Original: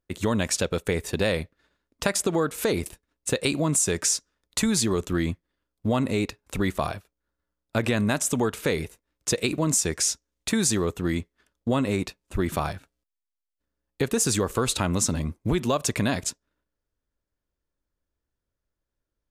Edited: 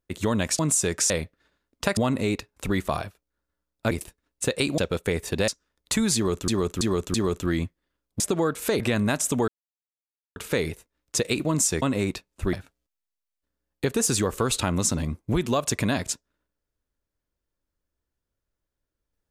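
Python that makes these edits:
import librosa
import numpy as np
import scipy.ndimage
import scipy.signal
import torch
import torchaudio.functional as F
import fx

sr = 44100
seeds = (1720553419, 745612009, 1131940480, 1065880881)

y = fx.edit(x, sr, fx.swap(start_s=0.59, length_s=0.7, other_s=3.63, other_length_s=0.51),
    fx.swap(start_s=2.16, length_s=0.6, other_s=5.87, other_length_s=1.94),
    fx.repeat(start_s=4.81, length_s=0.33, count=4),
    fx.insert_silence(at_s=8.49, length_s=0.88),
    fx.cut(start_s=9.95, length_s=1.79),
    fx.cut(start_s=12.45, length_s=0.25), tone=tone)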